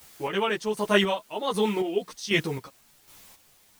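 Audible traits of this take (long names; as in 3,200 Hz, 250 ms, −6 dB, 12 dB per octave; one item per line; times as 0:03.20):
a quantiser's noise floor 10 bits, dither triangular
chopped level 1.3 Hz, depth 60%, duty 35%
a shimmering, thickened sound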